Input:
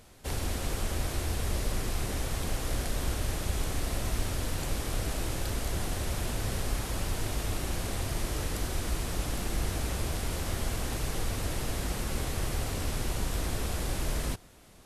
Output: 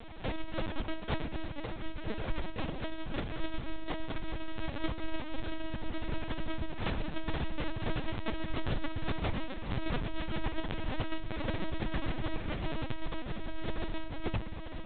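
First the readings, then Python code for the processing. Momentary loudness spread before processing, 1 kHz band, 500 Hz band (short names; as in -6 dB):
1 LU, -2.5 dB, -2.5 dB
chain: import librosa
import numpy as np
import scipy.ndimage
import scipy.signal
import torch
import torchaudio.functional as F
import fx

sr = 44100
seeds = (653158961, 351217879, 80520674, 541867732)

y = fx.hum_notches(x, sr, base_hz=60, count=7)
y = fx.over_compress(y, sr, threshold_db=-36.0, ratio=-0.5)
y = fx.echo_feedback(y, sr, ms=1096, feedback_pct=46, wet_db=-8.5)
y = fx.room_shoebox(y, sr, seeds[0], volume_m3=43.0, walls='mixed', distance_m=0.43)
y = fx.lpc_vocoder(y, sr, seeds[1], excitation='pitch_kept', order=10)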